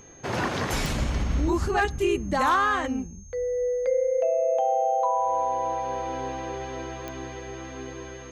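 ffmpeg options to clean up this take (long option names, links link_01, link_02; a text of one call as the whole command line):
ffmpeg -i in.wav -af "adeclick=threshold=4,bandreject=frequency=6400:width=30" out.wav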